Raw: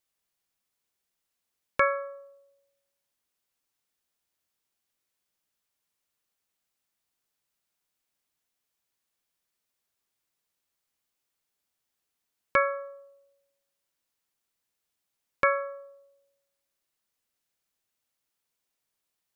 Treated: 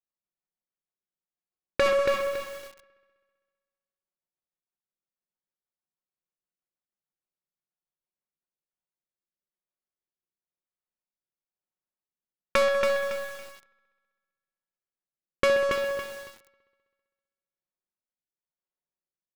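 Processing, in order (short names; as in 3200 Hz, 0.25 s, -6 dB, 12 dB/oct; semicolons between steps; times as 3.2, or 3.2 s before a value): rotary speaker horn 6.3 Hz, later 1 Hz, at 7.99; dynamic EQ 460 Hz, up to +6 dB, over -44 dBFS, Q 2.6; comb 5.5 ms, depth 60%; sample leveller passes 5; compressor 2.5:1, threshold -26 dBFS, peak gain reduction 10 dB; low-pass opened by the level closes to 1300 Hz, open at -26 dBFS; dark delay 65 ms, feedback 76%, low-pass 3400 Hz, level -11 dB; lo-fi delay 0.279 s, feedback 35%, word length 7-bit, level -4 dB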